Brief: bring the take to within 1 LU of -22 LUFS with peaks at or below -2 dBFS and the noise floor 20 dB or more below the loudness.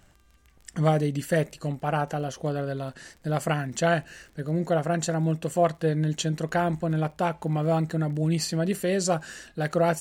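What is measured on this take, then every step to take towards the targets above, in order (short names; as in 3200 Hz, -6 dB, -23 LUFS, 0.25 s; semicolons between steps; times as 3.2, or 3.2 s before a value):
ticks 24/s; loudness -27.0 LUFS; peak -9.0 dBFS; loudness target -22.0 LUFS
-> de-click; gain +5 dB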